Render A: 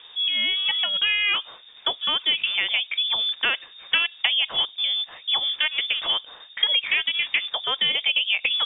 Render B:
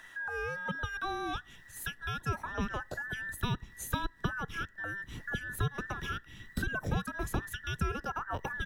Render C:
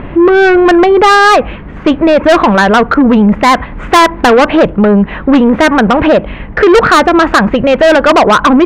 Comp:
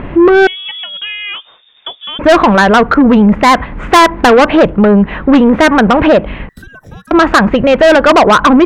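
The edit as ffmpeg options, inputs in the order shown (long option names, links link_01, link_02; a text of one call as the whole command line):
ffmpeg -i take0.wav -i take1.wav -i take2.wav -filter_complex "[2:a]asplit=3[link_01][link_02][link_03];[link_01]atrim=end=0.472[link_04];[0:a]atrim=start=0.468:end=2.192[link_05];[link_02]atrim=start=2.188:end=6.492[link_06];[1:a]atrim=start=6.488:end=7.112[link_07];[link_03]atrim=start=7.108[link_08];[link_04][link_05]acrossfade=duration=0.004:curve1=hsin:curve2=hsin[link_09];[link_09][link_06]acrossfade=duration=0.004:curve1=hsin:curve2=hsin[link_10];[link_10][link_07]acrossfade=duration=0.004:curve1=hsin:curve2=hsin[link_11];[link_11][link_08]acrossfade=duration=0.004:curve1=hsin:curve2=hsin" out.wav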